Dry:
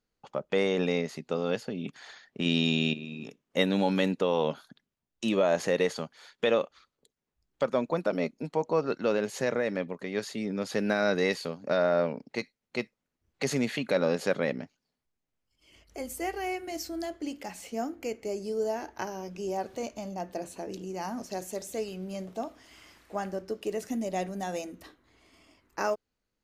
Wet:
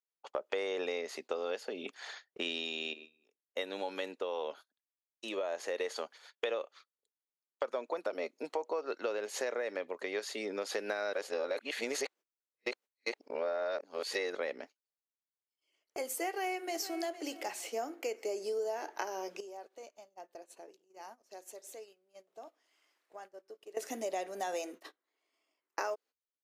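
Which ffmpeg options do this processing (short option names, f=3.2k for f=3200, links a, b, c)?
-filter_complex "[0:a]asplit=2[a][b];[b]afade=t=in:st=16.28:d=0.01,afade=t=out:st=17.01:d=0.01,aecho=0:1:460|920|1380:0.177828|0.0533484|0.0160045[c];[a][c]amix=inputs=2:normalize=0,asettb=1/sr,asplit=3[d][e][f];[d]atrim=end=19.404[g];[e]atrim=start=19.4:end=23.77,asetpts=PTS-STARTPTS,afade=t=in:d=0.004:c=qsin,afade=t=out:st=4.366:d=0.004:c=qsin,acompressor=threshold=-46dB:ratio=6:attack=3.2:release=140:knee=1:detection=peak[h];[f]atrim=start=23.766[i];[g][h]acrossfade=d=0.004:c1=hsin:c2=qsin[j];[j][i]acrossfade=d=0.004:c1=qsin:c2=hsin,asplit=5[k][l][m][n][o];[k]atrim=end=2.7,asetpts=PTS-STARTPTS,afade=t=out:st=2.38:d=0.32:silence=0.375837[p];[l]atrim=start=2.7:end=5.68,asetpts=PTS-STARTPTS,volume=-8.5dB[q];[m]atrim=start=5.68:end=11.132,asetpts=PTS-STARTPTS,afade=t=in:d=0.32:silence=0.375837[r];[n]atrim=start=11.128:end=14.352,asetpts=PTS-STARTPTS,areverse[s];[o]atrim=start=14.348[t];[p][q][r]concat=n=3:v=0:a=1[u];[u][s]acrossfade=d=0.004:c1=hsin:c2=hsin[v];[v][t]acrossfade=d=0.004:c1=hsin:c2=hsin,highpass=f=370:w=0.5412,highpass=f=370:w=1.3066,agate=range=-22dB:threshold=-50dB:ratio=16:detection=peak,acompressor=threshold=-35dB:ratio=6,volume=2.5dB"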